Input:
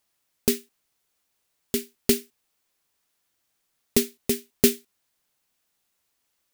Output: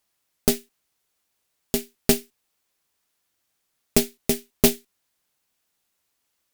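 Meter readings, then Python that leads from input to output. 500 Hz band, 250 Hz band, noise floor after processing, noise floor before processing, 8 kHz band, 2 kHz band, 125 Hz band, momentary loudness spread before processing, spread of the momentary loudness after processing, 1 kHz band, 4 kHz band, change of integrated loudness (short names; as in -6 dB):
+1.0 dB, +1.0 dB, -76 dBFS, -76 dBFS, +2.0 dB, +2.5 dB, +5.0 dB, 8 LU, 8 LU, +9.0 dB, +2.0 dB, +1.5 dB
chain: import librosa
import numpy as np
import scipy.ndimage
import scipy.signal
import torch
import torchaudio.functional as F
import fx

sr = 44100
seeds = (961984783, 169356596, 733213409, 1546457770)

y = np.where(x < 0.0, 10.0 ** (-3.0 / 20.0) * x, x)
y = fx.cheby_harmonics(y, sr, harmonics=(5, 6), levels_db=(-22, -12), full_scale_db=-1.0)
y = F.gain(torch.from_numpy(y), -1.5).numpy()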